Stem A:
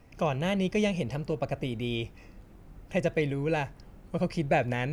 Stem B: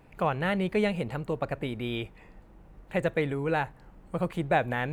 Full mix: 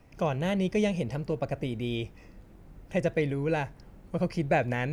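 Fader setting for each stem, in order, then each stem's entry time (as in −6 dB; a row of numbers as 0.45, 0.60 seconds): −1.5, −12.0 decibels; 0.00, 0.00 seconds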